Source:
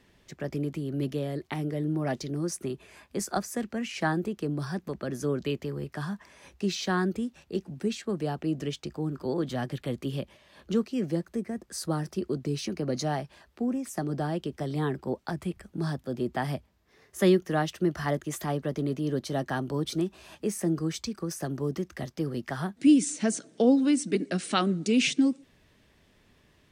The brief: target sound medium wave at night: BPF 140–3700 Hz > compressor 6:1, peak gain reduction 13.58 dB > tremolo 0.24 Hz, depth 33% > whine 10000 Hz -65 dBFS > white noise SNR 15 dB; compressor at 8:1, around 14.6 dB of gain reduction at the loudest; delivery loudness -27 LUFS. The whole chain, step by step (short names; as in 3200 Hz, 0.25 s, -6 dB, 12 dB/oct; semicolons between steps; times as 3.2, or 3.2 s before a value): compressor 8:1, threshold -31 dBFS; BPF 140–3700 Hz; compressor 6:1, threshold -43 dBFS; tremolo 0.24 Hz, depth 33%; whine 10000 Hz -65 dBFS; white noise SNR 15 dB; gain +21.5 dB